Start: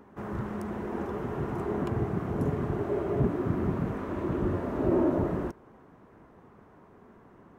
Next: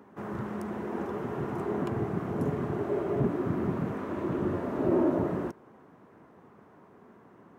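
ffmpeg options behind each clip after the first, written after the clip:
-af "highpass=120"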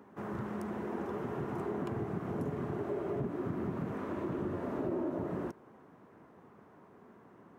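-af "acompressor=threshold=0.0316:ratio=4,volume=0.75"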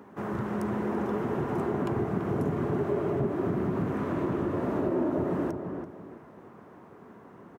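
-filter_complex "[0:a]asplit=2[s0][s1];[s1]adelay=335,lowpass=f=1500:p=1,volume=0.531,asplit=2[s2][s3];[s3]adelay=335,lowpass=f=1500:p=1,volume=0.3,asplit=2[s4][s5];[s5]adelay=335,lowpass=f=1500:p=1,volume=0.3,asplit=2[s6][s7];[s7]adelay=335,lowpass=f=1500:p=1,volume=0.3[s8];[s0][s2][s4][s6][s8]amix=inputs=5:normalize=0,volume=2.11"

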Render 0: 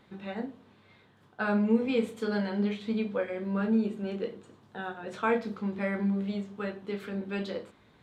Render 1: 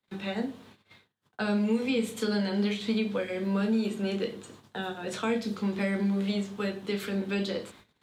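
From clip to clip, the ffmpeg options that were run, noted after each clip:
-filter_complex "[0:a]agate=range=0.02:threshold=0.00141:ratio=16:detection=peak,highshelf=f=2800:g=12,acrossover=split=140|320|650|2700[s0][s1][s2][s3][s4];[s0]acompressor=threshold=0.00316:ratio=4[s5];[s1]acompressor=threshold=0.0224:ratio=4[s6];[s2]acompressor=threshold=0.01:ratio=4[s7];[s3]acompressor=threshold=0.00501:ratio=4[s8];[s4]acompressor=threshold=0.00631:ratio=4[s9];[s5][s6][s7][s8][s9]amix=inputs=5:normalize=0,volume=1.78"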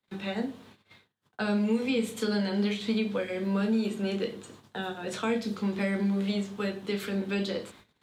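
-af anull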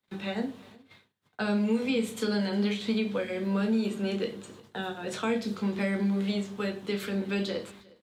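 -af "aecho=1:1:358:0.0668"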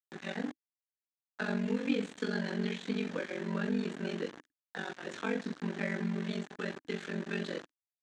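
-af "aeval=exprs='val(0)*gte(abs(val(0)),0.0168)':c=same,highpass=150,equalizer=f=290:t=q:w=4:g=9,equalizer=f=1700:t=q:w=4:g=9,equalizer=f=5000:t=q:w=4:g=-5,lowpass=f=7000:w=0.5412,lowpass=f=7000:w=1.3066,aeval=exprs='val(0)*sin(2*PI*23*n/s)':c=same,volume=0.631"

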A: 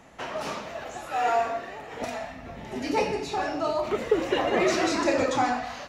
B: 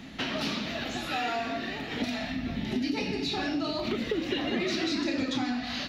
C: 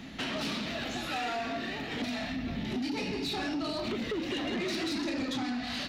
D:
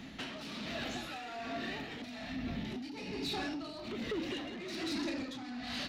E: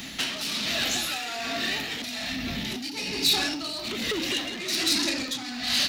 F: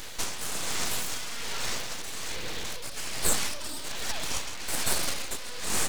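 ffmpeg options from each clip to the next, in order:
-af "equalizer=f=250:t=o:w=1:g=10,equalizer=f=500:t=o:w=1:g=-9,equalizer=f=1000:t=o:w=1:g=-9,equalizer=f=4000:t=o:w=1:g=11,equalizer=f=8000:t=o:w=1:g=-11,acompressor=threshold=0.0178:ratio=5,volume=2.24"
-af "asoftclip=type=tanh:threshold=0.0398"
-af "tremolo=f=1.2:d=0.62,volume=0.708"
-af "crystalizer=i=7:c=0,volume=1.78"
-af "aeval=exprs='abs(val(0))':c=same"

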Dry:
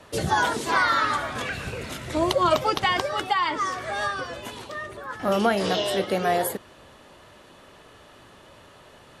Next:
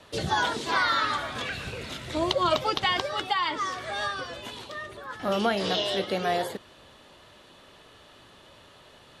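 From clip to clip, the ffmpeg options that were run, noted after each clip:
-filter_complex "[0:a]acrossover=split=7300[s0][s1];[s1]acompressor=threshold=0.00355:ratio=4:attack=1:release=60[s2];[s0][s2]amix=inputs=2:normalize=0,equalizer=f=3700:t=o:w=0.89:g=6.5,volume=0.631"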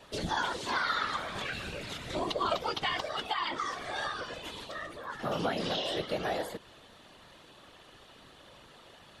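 -af "acompressor=threshold=0.02:ratio=1.5,afftfilt=real='hypot(re,im)*cos(2*PI*random(0))':imag='hypot(re,im)*sin(2*PI*random(1))':win_size=512:overlap=0.75,volume=1.58"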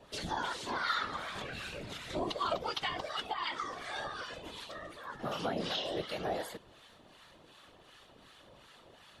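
-filter_complex "[0:a]acrossover=split=910[s0][s1];[s0]aeval=exprs='val(0)*(1-0.7/2+0.7/2*cos(2*PI*2.7*n/s))':c=same[s2];[s1]aeval=exprs='val(0)*(1-0.7/2-0.7/2*cos(2*PI*2.7*n/s))':c=same[s3];[s2][s3]amix=inputs=2:normalize=0"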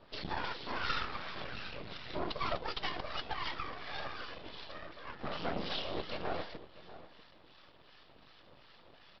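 -filter_complex "[0:a]aresample=11025,aeval=exprs='max(val(0),0)':c=same,aresample=44100,asplit=2[s0][s1];[s1]adelay=641.4,volume=0.178,highshelf=f=4000:g=-14.4[s2];[s0][s2]amix=inputs=2:normalize=0,volume=1.26"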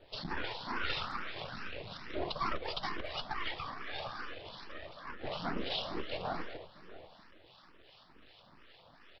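-filter_complex "[0:a]asplit=2[s0][s1];[s1]adelay=210,highpass=300,lowpass=3400,asoftclip=type=hard:threshold=0.0447,volume=0.224[s2];[s0][s2]amix=inputs=2:normalize=0,asplit=2[s3][s4];[s4]afreqshift=2.3[s5];[s3][s5]amix=inputs=2:normalize=1,volume=1.41"

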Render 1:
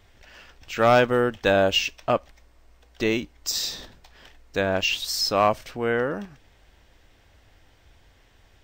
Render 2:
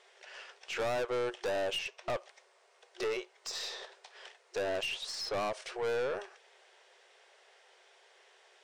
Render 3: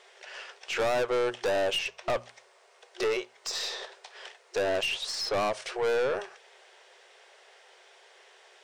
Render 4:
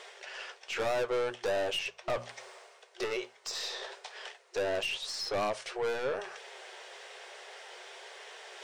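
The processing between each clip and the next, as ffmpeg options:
-filter_complex "[0:a]afftfilt=real='re*between(b*sr/4096,360,11000)':imag='im*between(b*sr/4096,360,11000)':win_size=4096:overlap=0.75,acrossover=split=1400|2800[s0][s1][s2];[s0]acompressor=threshold=0.0794:ratio=4[s3];[s1]acompressor=threshold=0.0126:ratio=4[s4];[s2]acompressor=threshold=0.00708:ratio=4[s5];[s3][s4][s5]amix=inputs=3:normalize=0,aeval=exprs='(tanh(31.6*val(0)+0.2)-tanh(0.2))/31.6':c=same"
-af "bandreject=f=60:t=h:w=6,bandreject=f=120:t=h:w=6,bandreject=f=180:t=h:w=6,bandreject=f=240:t=h:w=6,volume=2"
-af "areverse,acompressor=mode=upward:threshold=0.0251:ratio=2.5,areverse,flanger=delay=6.3:depth=4.1:regen=-55:speed=0.48:shape=triangular"

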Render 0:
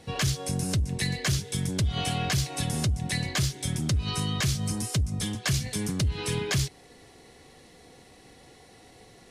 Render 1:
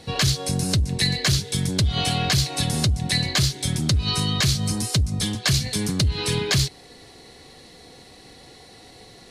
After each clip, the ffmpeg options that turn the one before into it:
-af "equalizer=f=4200:w=3.3:g=8,volume=1.78"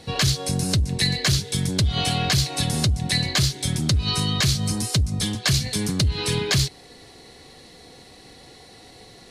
-af anull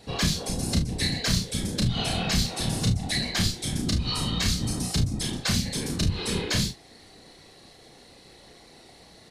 -af "afftfilt=real='hypot(re,im)*cos(2*PI*random(0))':imag='hypot(re,im)*sin(2*PI*random(1))':win_size=512:overlap=0.75,aecho=1:1:33|50|73:0.631|0.266|0.211,aeval=exprs='0.237*(cos(1*acos(clip(val(0)/0.237,-1,1)))-cos(1*PI/2))+0.00668*(cos(2*acos(clip(val(0)/0.237,-1,1)))-cos(2*PI/2))+0.00168*(cos(3*acos(clip(val(0)/0.237,-1,1)))-cos(3*PI/2))':c=same"

